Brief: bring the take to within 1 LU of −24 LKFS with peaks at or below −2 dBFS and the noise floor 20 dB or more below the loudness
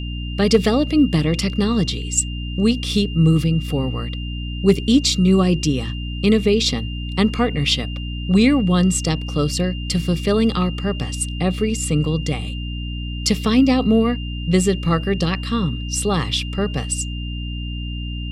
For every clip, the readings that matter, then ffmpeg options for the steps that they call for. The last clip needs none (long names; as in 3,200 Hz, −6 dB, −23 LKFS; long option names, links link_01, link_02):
mains hum 60 Hz; hum harmonics up to 300 Hz; level of the hum −24 dBFS; interfering tone 2,800 Hz; level of the tone −34 dBFS; integrated loudness −19.5 LKFS; sample peak −2.5 dBFS; target loudness −24.0 LKFS
→ -af "bandreject=frequency=60:width_type=h:width=6,bandreject=frequency=120:width_type=h:width=6,bandreject=frequency=180:width_type=h:width=6,bandreject=frequency=240:width_type=h:width=6,bandreject=frequency=300:width_type=h:width=6"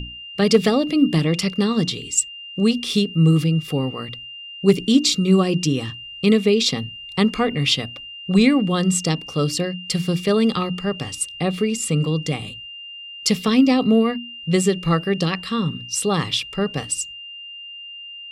mains hum none found; interfering tone 2,800 Hz; level of the tone −34 dBFS
→ -af "bandreject=frequency=2800:width=30"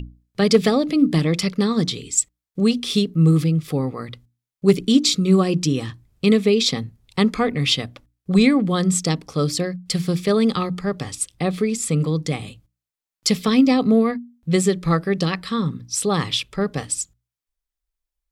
interfering tone none found; integrated loudness −20.0 LKFS; sample peak −3.0 dBFS; target loudness −24.0 LKFS
→ -af "volume=-4dB"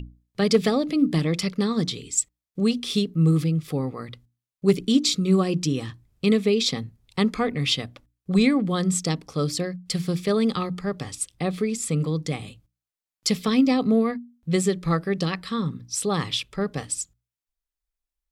integrated loudness −24.0 LKFS; sample peak −7.0 dBFS; background noise floor −90 dBFS